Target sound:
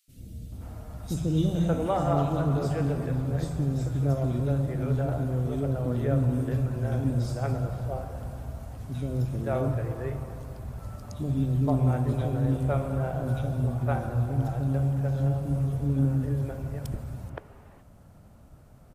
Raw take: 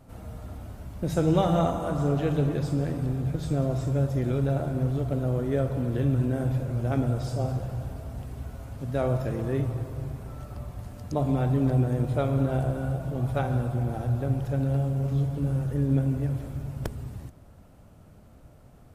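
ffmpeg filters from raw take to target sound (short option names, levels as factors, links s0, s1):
-filter_complex "[0:a]acrossover=split=390|2800[s0][s1][s2];[s0]adelay=80[s3];[s1]adelay=520[s4];[s3][s4][s2]amix=inputs=3:normalize=0"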